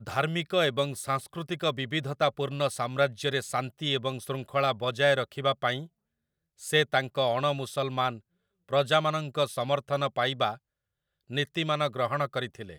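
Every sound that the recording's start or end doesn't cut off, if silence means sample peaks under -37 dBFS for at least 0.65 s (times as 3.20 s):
6.63–10.55 s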